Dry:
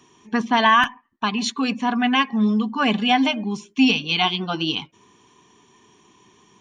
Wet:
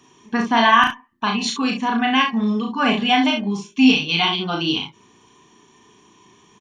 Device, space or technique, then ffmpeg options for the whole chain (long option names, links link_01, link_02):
slapback doubling: -filter_complex "[0:a]asplit=3[link_01][link_02][link_03];[link_02]adelay=35,volume=-3dB[link_04];[link_03]adelay=66,volume=-7.5dB[link_05];[link_01][link_04][link_05]amix=inputs=3:normalize=0"